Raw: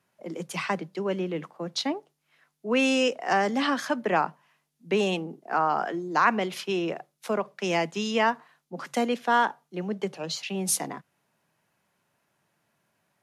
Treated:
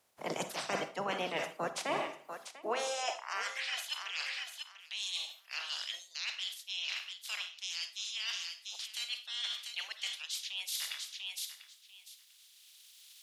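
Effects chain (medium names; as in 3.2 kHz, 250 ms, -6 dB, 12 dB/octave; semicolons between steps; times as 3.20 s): spectral peaks clipped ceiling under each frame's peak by 28 dB; recorder AGC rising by 6.7 dB/s; high-pass sweep 60 Hz -> 3.4 kHz, 1.75–3.92 s; reverb removal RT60 0.92 s; thinning echo 694 ms, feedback 16%, high-pass 660 Hz, level -15.5 dB; reverberation RT60 0.50 s, pre-delay 43 ms, DRR 9.5 dB; reverse; compression 16:1, threshold -34 dBFS, peak gain reduction 20.5 dB; reverse; peaking EQ 630 Hz +9 dB 1.4 oct; trim -1.5 dB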